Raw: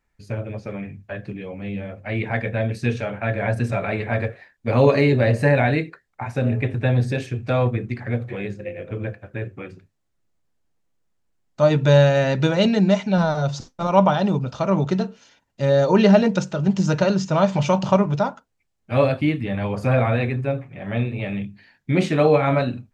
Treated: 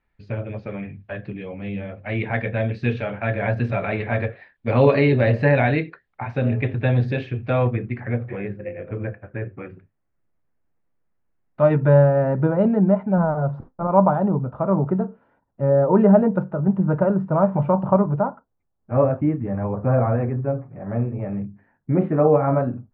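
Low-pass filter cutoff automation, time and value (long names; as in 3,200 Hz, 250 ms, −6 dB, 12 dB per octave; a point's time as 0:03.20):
low-pass filter 24 dB per octave
0:07.13 3,700 Hz
0:08.43 2,200 Hz
0:11.65 2,200 Hz
0:12.06 1,300 Hz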